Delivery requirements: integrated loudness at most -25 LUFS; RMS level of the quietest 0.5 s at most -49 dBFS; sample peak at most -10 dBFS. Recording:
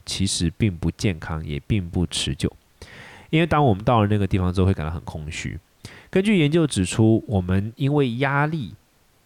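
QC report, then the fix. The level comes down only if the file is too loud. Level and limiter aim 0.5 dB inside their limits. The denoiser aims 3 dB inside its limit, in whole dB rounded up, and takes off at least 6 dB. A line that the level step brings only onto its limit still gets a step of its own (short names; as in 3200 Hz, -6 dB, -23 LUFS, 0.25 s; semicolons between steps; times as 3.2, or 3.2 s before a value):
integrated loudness -22.0 LUFS: fail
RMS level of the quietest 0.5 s -59 dBFS: OK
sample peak -8.5 dBFS: fail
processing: gain -3.5 dB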